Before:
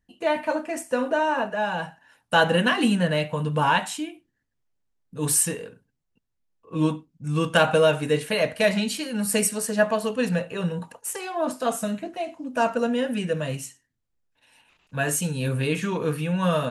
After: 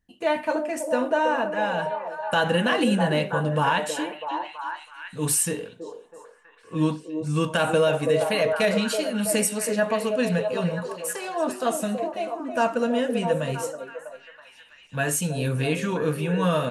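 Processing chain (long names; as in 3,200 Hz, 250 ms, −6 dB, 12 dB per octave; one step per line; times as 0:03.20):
on a send: echo through a band-pass that steps 325 ms, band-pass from 450 Hz, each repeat 0.7 octaves, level −3.5 dB
on the sum: brickwall limiter −12 dBFS, peak gain reduction 6.5 dB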